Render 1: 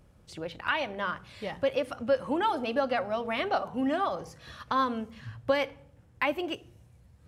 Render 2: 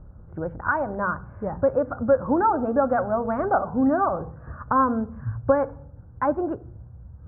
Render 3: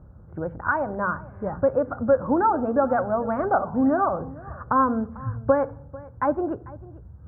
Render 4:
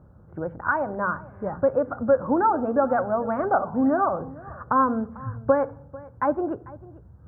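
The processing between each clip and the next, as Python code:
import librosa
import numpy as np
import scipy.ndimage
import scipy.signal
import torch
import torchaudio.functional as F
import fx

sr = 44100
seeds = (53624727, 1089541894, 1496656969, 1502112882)

y1 = scipy.signal.sosfilt(scipy.signal.cheby1(5, 1.0, 1500.0, 'lowpass', fs=sr, output='sos'), x)
y1 = fx.low_shelf(y1, sr, hz=120.0, db=11.5)
y1 = F.gain(torch.from_numpy(y1), 7.0).numpy()
y2 = scipy.signal.sosfilt(scipy.signal.butter(2, 55.0, 'highpass', fs=sr, output='sos'), y1)
y2 = y2 + 10.0 ** (-20.5 / 20.0) * np.pad(y2, (int(445 * sr / 1000.0), 0))[:len(y2)]
y3 = fx.low_shelf(y2, sr, hz=67.0, db=-12.0)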